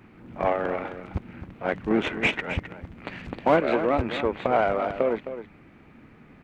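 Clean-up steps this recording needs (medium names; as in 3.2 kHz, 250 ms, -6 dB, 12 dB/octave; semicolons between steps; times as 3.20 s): clip repair -9 dBFS; inverse comb 262 ms -11 dB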